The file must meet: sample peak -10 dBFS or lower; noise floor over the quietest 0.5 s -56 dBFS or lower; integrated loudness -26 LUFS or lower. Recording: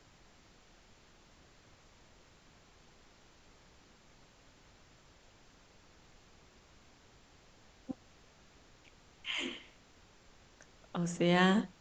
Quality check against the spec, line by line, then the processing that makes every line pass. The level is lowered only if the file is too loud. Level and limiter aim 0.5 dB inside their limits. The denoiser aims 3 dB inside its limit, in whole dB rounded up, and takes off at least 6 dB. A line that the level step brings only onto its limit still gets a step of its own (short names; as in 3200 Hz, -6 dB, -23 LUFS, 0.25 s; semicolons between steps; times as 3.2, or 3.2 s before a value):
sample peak -14.0 dBFS: OK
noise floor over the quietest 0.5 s -62 dBFS: OK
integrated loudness -33.5 LUFS: OK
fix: none